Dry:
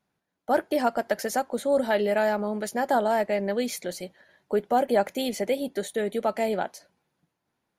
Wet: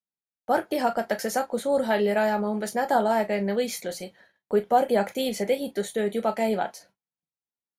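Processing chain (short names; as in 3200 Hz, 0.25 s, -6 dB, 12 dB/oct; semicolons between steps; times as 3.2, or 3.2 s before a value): gate -56 dBFS, range -28 dB; reverb, pre-delay 3 ms, DRR 6 dB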